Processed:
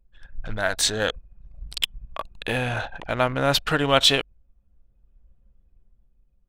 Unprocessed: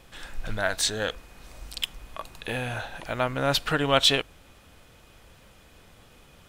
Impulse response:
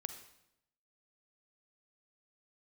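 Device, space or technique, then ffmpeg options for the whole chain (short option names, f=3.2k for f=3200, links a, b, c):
voice memo with heavy noise removal: -af "anlmdn=1.58,dynaudnorm=f=140:g=11:m=6dB"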